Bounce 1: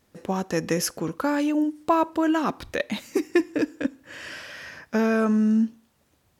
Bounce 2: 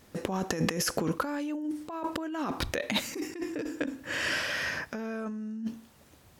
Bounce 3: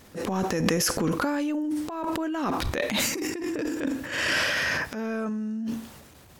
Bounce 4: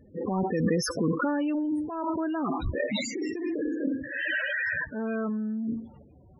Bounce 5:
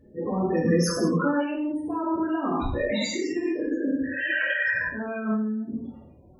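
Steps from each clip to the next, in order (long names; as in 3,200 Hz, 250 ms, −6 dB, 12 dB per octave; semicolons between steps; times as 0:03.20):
compressor whose output falls as the input rises −32 dBFS, ratio −1
transient designer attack −11 dB, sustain +7 dB; level +6 dB
spectral peaks only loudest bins 16
convolution reverb, pre-delay 3 ms, DRR −4.5 dB; level −2.5 dB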